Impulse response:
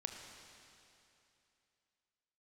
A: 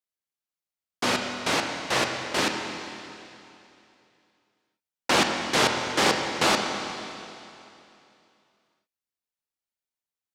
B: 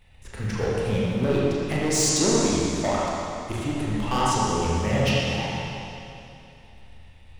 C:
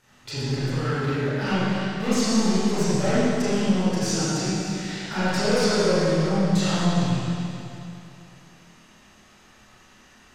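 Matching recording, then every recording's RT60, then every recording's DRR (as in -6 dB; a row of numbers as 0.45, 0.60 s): A; 2.8, 2.8, 2.8 s; 3.0, -6.5, -12.5 dB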